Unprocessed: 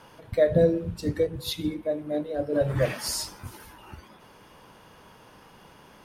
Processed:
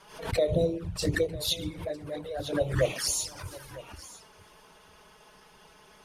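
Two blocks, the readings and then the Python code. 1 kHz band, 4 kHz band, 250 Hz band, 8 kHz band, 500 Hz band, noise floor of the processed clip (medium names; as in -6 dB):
-1.5 dB, +2.5 dB, -5.0 dB, +3.5 dB, -4.5 dB, -57 dBFS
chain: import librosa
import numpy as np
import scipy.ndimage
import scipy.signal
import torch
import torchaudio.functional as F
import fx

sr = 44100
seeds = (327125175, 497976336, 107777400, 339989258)

p1 = scipy.signal.sosfilt(scipy.signal.bessel(2, 8600.0, 'lowpass', norm='mag', fs=sr, output='sos'), x)
p2 = fx.high_shelf(p1, sr, hz=4000.0, db=10.0)
p3 = fx.hpss(p2, sr, part='harmonic', gain_db=-8)
p4 = fx.peak_eq(p3, sr, hz=230.0, db=-13.5, octaves=0.26)
p5 = fx.env_flanger(p4, sr, rest_ms=5.4, full_db=-25.0)
p6 = p5 + fx.echo_single(p5, sr, ms=953, db=-18.5, dry=0)
p7 = fx.pre_swell(p6, sr, db_per_s=99.0)
y = F.gain(torch.from_numpy(p7), 2.0).numpy()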